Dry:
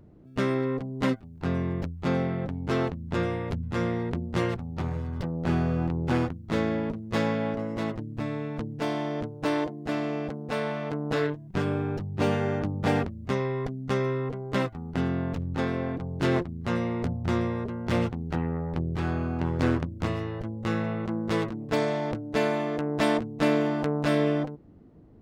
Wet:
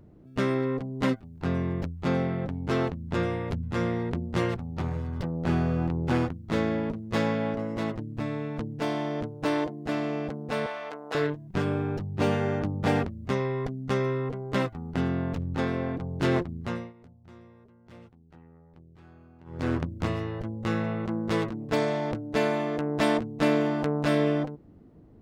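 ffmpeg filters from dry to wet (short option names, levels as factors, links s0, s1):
-filter_complex "[0:a]asettb=1/sr,asplit=3[s0][s1][s2];[s0]atrim=end=10.664[s3];[s1]atrim=start=10.66:end=11.15,asetpts=PTS-STARTPTS,afade=t=in:d=0.004:c=qsin,afade=t=out:st=0.486:d=0.004:c=qsin,highpass=610[s4];[s2]atrim=start=11.146[s5];[s3][s4]acrossfade=d=0.004:c1=hsin:c2=qsin[s6];[s6][s5]acrossfade=d=0.004:c1=qsin:c2=hsin,asplit=3[s7][s8][s9];[s7]atrim=end=16.93,asetpts=PTS-STARTPTS,afade=t=out:st=16.56:d=0.37:silence=0.0630957[s10];[s8]atrim=start=16.93:end=19.45,asetpts=PTS-STARTPTS,volume=0.0631[s11];[s9]atrim=start=19.45,asetpts=PTS-STARTPTS,afade=t=in:d=0.37:silence=0.0630957[s12];[s10][s11][s12]concat=n=3:v=0:a=1"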